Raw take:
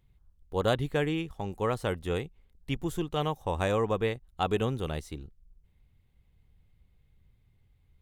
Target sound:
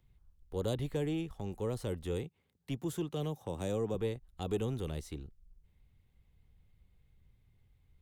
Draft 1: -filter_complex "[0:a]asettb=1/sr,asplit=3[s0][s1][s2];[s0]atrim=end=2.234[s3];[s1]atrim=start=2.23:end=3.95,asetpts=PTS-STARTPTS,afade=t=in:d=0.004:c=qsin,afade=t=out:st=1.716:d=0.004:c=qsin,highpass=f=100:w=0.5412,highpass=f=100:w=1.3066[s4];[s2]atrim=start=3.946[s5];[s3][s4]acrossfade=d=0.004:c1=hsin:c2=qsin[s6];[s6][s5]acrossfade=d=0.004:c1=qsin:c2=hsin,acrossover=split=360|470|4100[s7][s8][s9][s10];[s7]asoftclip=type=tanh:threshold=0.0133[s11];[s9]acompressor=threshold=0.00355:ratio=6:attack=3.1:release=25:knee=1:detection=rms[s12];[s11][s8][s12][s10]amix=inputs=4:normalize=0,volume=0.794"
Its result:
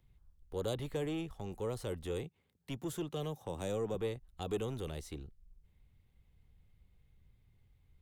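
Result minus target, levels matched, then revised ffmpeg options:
saturation: distortion +8 dB
-filter_complex "[0:a]asettb=1/sr,asplit=3[s0][s1][s2];[s0]atrim=end=2.234[s3];[s1]atrim=start=2.23:end=3.95,asetpts=PTS-STARTPTS,afade=t=in:d=0.004:c=qsin,afade=t=out:st=1.716:d=0.004:c=qsin,highpass=f=100:w=0.5412,highpass=f=100:w=1.3066[s4];[s2]atrim=start=3.946[s5];[s3][s4]acrossfade=d=0.004:c1=hsin:c2=qsin[s6];[s6][s5]acrossfade=d=0.004:c1=qsin:c2=hsin,acrossover=split=360|470|4100[s7][s8][s9][s10];[s7]asoftclip=type=tanh:threshold=0.0355[s11];[s9]acompressor=threshold=0.00355:ratio=6:attack=3.1:release=25:knee=1:detection=rms[s12];[s11][s8][s12][s10]amix=inputs=4:normalize=0,volume=0.794"

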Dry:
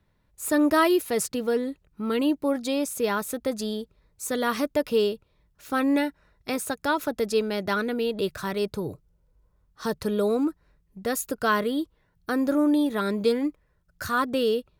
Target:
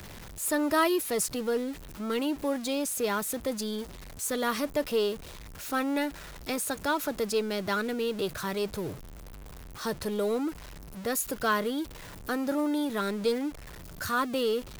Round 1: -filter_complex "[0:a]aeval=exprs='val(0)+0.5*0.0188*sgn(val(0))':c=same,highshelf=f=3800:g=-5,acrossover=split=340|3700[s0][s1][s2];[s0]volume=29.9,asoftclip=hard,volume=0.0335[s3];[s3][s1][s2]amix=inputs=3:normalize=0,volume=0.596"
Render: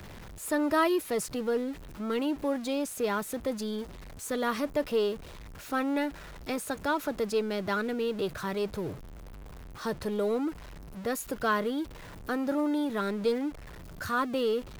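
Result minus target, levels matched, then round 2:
8 kHz band -6.5 dB
-filter_complex "[0:a]aeval=exprs='val(0)+0.5*0.0188*sgn(val(0))':c=same,highshelf=f=3800:g=3.5,acrossover=split=340|3700[s0][s1][s2];[s0]volume=29.9,asoftclip=hard,volume=0.0335[s3];[s3][s1][s2]amix=inputs=3:normalize=0,volume=0.596"

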